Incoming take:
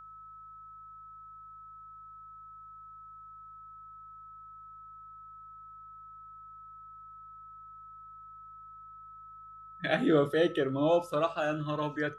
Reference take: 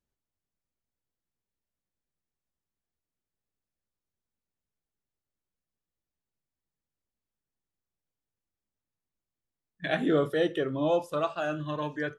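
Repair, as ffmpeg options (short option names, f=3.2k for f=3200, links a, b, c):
-af "bandreject=f=52.8:t=h:w=4,bandreject=f=105.6:t=h:w=4,bandreject=f=158.4:t=h:w=4,bandreject=f=1.3k:w=30"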